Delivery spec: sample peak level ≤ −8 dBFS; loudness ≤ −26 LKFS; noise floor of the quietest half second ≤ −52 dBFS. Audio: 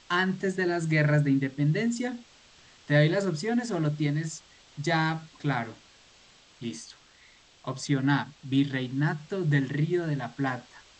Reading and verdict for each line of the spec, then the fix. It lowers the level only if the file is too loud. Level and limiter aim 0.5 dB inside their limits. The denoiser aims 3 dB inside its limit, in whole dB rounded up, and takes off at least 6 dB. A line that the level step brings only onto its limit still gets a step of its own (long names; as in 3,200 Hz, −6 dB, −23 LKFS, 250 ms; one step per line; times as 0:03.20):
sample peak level −10.0 dBFS: in spec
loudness −28.0 LKFS: in spec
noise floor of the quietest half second −57 dBFS: in spec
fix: no processing needed